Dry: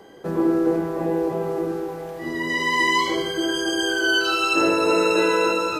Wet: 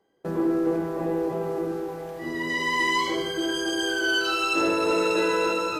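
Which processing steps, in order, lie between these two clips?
gate with hold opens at -30 dBFS; in parallel at -4.5 dB: soft clip -20.5 dBFS, distortion -11 dB; on the sum: gain -6.5 dB

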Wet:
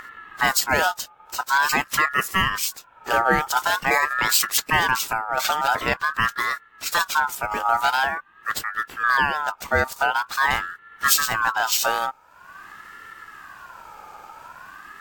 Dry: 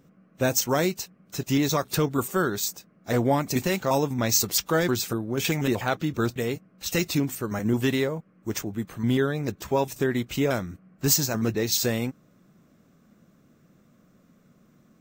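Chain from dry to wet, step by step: upward compressor, threshold -32 dBFS; ring modulator with a swept carrier 1300 Hz, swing 20%, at 0.46 Hz; gain +6 dB

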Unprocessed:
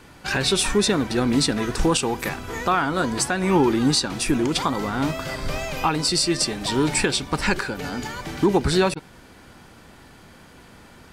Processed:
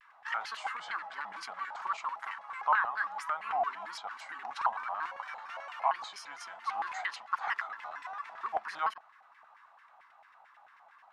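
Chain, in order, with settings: HPF 180 Hz 24 dB/oct; resonant low shelf 620 Hz -13 dB, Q 3; LFO band-pass saw down 9.1 Hz 870–1800 Hz; shaped vibrato square 4.4 Hz, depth 250 cents; gain -7.5 dB

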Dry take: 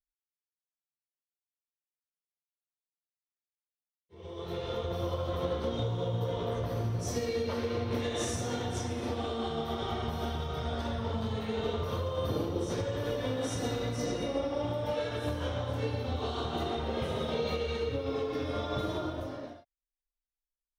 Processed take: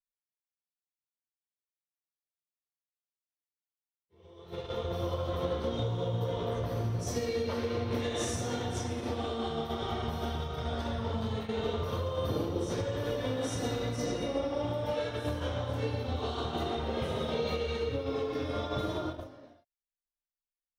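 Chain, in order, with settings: gate -35 dBFS, range -11 dB

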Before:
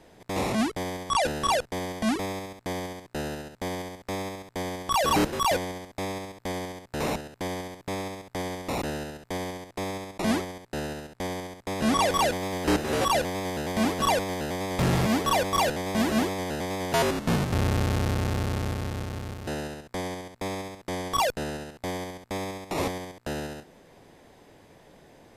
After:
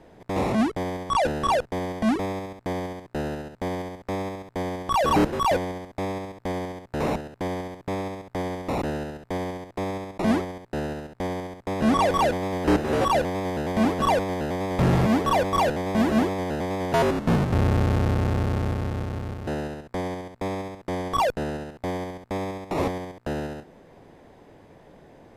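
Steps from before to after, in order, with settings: high shelf 2600 Hz -12 dB; gain +4 dB

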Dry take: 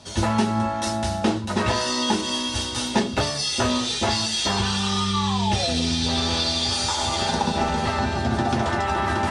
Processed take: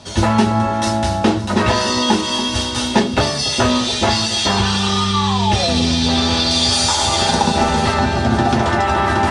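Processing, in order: high shelf 7300 Hz -6 dB, from 6.51 s +5 dB, from 7.94 s -3 dB; echo with dull and thin repeats by turns 0.283 s, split 910 Hz, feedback 55%, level -12.5 dB; gain +7 dB

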